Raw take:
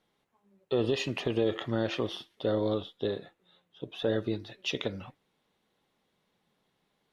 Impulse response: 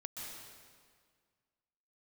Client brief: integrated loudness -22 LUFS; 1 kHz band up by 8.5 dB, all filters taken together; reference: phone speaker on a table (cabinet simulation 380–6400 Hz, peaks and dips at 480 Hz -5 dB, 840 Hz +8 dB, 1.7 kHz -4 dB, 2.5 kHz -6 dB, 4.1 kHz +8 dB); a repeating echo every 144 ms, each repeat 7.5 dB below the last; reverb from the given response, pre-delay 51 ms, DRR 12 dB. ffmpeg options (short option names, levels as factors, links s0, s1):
-filter_complex "[0:a]equalizer=f=1000:t=o:g=6.5,aecho=1:1:144|288|432|576|720:0.422|0.177|0.0744|0.0312|0.0131,asplit=2[s0][s1];[1:a]atrim=start_sample=2205,adelay=51[s2];[s1][s2]afir=irnorm=-1:irlink=0,volume=0.299[s3];[s0][s3]amix=inputs=2:normalize=0,highpass=f=380:w=0.5412,highpass=f=380:w=1.3066,equalizer=f=480:t=q:w=4:g=-5,equalizer=f=840:t=q:w=4:g=8,equalizer=f=1700:t=q:w=4:g=-4,equalizer=f=2500:t=q:w=4:g=-6,equalizer=f=4100:t=q:w=4:g=8,lowpass=f=6400:w=0.5412,lowpass=f=6400:w=1.3066,volume=3.55"